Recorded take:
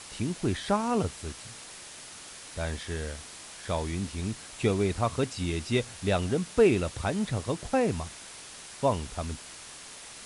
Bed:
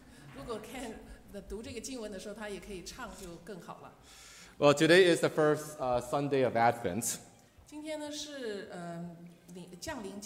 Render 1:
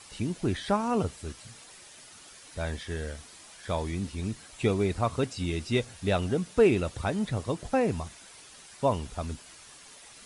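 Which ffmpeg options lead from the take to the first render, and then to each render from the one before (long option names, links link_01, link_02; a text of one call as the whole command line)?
ffmpeg -i in.wav -af "afftdn=noise_reduction=8:noise_floor=-46" out.wav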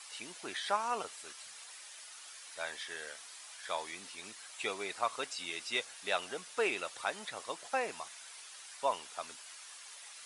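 ffmpeg -i in.wav -af "highpass=910" out.wav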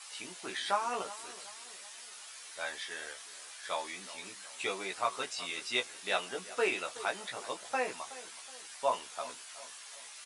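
ffmpeg -i in.wav -filter_complex "[0:a]asplit=2[link_01][link_02];[link_02]adelay=16,volume=-3dB[link_03];[link_01][link_03]amix=inputs=2:normalize=0,asplit=2[link_04][link_05];[link_05]adelay=372,lowpass=frequency=2000:poles=1,volume=-16dB,asplit=2[link_06][link_07];[link_07]adelay=372,lowpass=frequency=2000:poles=1,volume=0.48,asplit=2[link_08][link_09];[link_09]adelay=372,lowpass=frequency=2000:poles=1,volume=0.48,asplit=2[link_10][link_11];[link_11]adelay=372,lowpass=frequency=2000:poles=1,volume=0.48[link_12];[link_04][link_06][link_08][link_10][link_12]amix=inputs=5:normalize=0" out.wav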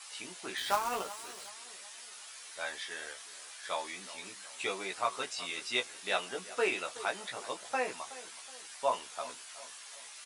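ffmpeg -i in.wav -filter_complex "[0:a]asplit=3[link_01][link_02][link_03];[link_01]afade=type=out:start_time=0.57:duration=0.02[link_04];[link_02]acrusher=bits=2:mode=log:mix=0:aa=0.000001,afade=type=in:start_time=0.57:duration=0.02,afade=type=out:start_time=1.48:duration=0.02[link_05];[link_03]afade=type=in:start_time=1.48:duration=0.02[link_06];[link_04][link_05][link_06]amix=inputs=3:normalize=0" out.wav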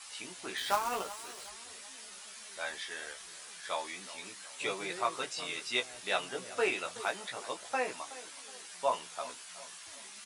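ffmpeg -i in.wav -i bed.wav -filter_complex "[1:a]volume=-24dB[link_01];[0:a][link_01]amix=inputs=2:normalize=0" out.wav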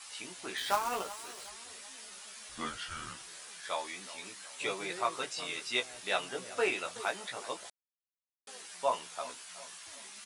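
ffmpeg -i in.wav -filter_complex "[0:a]asettb=1/sr,asplit=3[link_01][link_02][link_03];[link_01]atrim=end=2.494[link_04];[link_02]atrim=start=2.49:end=3.23,asetpts=PTS-STARTPTS,afade=type=in:duration=0.004:curve=qsin,afade=type=out:start_time=0.736:duration=0.004:curve=qsin,afreqshift=-340[link_05];[link_03]atrim=start=3.226[link_06];[link_04][link_05]acrossfade=duration=0.004:curve1=hsin:curve2=qsin[link_07];[link_07][link_06]acrossfade=duration=0.004:curve1=qsin:curve2=hsin,asplit=3[link_08][link_09][link_10];[link_08]atrim=end=7.7,asetpts=PTS-STARTPTS,afade=type=out:start_time=7.696:duration=0.004:curve=hsin[link_11];[link_09]atrim=start=7.7:end=8.47,asetpts=PTS-STARTPTS,volume=0[link_12];[link_10]atrim=start=8.47,asetpts=PTS-STARTPTS,afade=type=in:duration=0.004:curve=hsin[link_13];[link_11][link_12][link_13]concat=n=3:v=0:a=1" out.wav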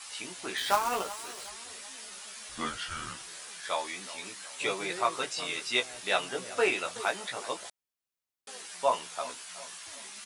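ffmpeg -i in.wav -af "volume=4dB" out.wav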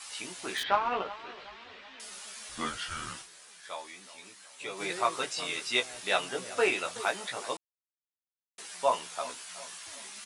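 ffmpeg -i in.wav -filter_complex "[0:a]asettb=1/sr,asplit=3[link_01][link_02][link_03];[link_01]atrim=end=0.634[link_04];[link_02]atrim=start=0.63:end=2,asetpts=PTS-STARTPTS,afade=type=in:duration=0.004:curve=qsin,afade=type=out:start_time=1.366:duration=0.004:curve=qsin,lowpass=frequency=3400:width=0.5412,lowpass=frequency=3400:width=1.3066[link_05];[link_03]atrim=start=1.996[link_06];[link_04][link_05]acrossfade=duration=0.004:curve1=hsin:curve2=qsin[link_07];[link_07][link_06]acrossfade=duration=0.004:curve1=qsin:curve2=hsin,asplit=5[link_08][link_09][link_10][link_11][link_12];[link_08]atrim=end=3.31,asetpts=PTS-STARTPTS,afade=type=out:start_time=3.19:duration=0.12:curve=qua:silence=0.375837[link_13];[link_09]atrim=start=3.31:end=4.7,asetpts=PTS-STARTPTS,volume=-8.5dB[link_14];[link_10]atrim=start=4.7:end=7.57,asetpts=PTS-STARTPTS,afade=type=in:duration=0.12:curve=qua:silence=0.375837,afade=type=out:start_time=2.866:duration=0.004:curve=hsin[link_15];[link_11]atrim=start=7.57:end=8.58,asetpts=PTS-STARTPTS,volume=0[link_16];[link_12]atrim=start=8.58,asetpts=PTS-STARTPTS,afade=type=in:duration=0.004:curve=hsin[link_17];[link_13][link_14][link_15][link_16][link_17]concat=n=5:v=0:a=1" out.wav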